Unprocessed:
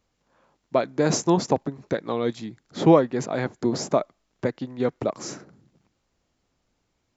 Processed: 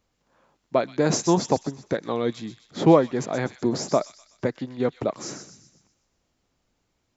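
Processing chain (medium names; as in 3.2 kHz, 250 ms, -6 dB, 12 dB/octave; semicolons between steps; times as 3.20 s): feedback echo behind a high-pass 125 ms, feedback 47%, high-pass 3 kHz, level -7.5 dB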